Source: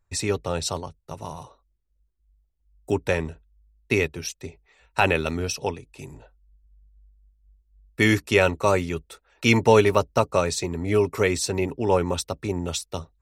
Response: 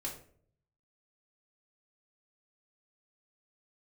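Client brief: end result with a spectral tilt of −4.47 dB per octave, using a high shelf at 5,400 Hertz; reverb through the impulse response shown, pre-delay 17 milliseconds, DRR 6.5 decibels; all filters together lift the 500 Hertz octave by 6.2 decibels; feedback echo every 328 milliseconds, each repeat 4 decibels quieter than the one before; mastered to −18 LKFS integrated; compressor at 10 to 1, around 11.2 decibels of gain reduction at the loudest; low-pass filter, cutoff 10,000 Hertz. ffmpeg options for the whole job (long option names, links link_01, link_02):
-filter_complex "[0:a]lowpass=10000,equalizer=frequency=500:width_type=o:gain=7.5,highshelf=frequency=5400:gain=4.5,acompressor=threshold=-17dB:ratio=10,aecho=1:1:328|656|984|1312|1640|1968|2296|2624|2952:0.631|0.398|0.25|0.158|0.0994|0.0626|0.0394|0.0249|0.0157,asplit=2[link_01][link_02];[1:a]atrim=start_sample=2205,adelay=17[link_03];[link_02][link_03]afir=irnorm=-1:irlink=0,volume=-6.5dB[link_04];[link_01][link_04]amix=inputs=2:normalize=0,volume=4.5dB"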